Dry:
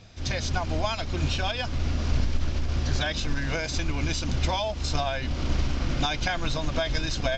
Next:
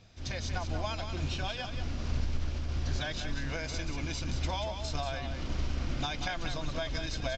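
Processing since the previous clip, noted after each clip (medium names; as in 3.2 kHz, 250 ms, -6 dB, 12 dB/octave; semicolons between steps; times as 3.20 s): delay 185 ms -7.5 dB; trim -8 dB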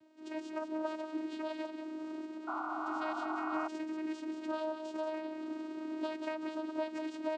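treble shelf 2.3 kHz -10.5 dB; vocoder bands 8, saw 313 Hz; painted sound noise, 2.47–3.68 s, 650–1500 Hz -40 dBFS; trim +1 dB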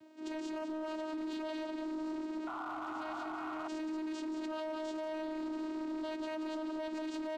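in parallel at -3 dB: compressor with a negative ratio -41 dBFS; on the sum: peak limiter -32 dBFS, peak gain reduction 8.5 dB; overload inside the chain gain 35.5 dB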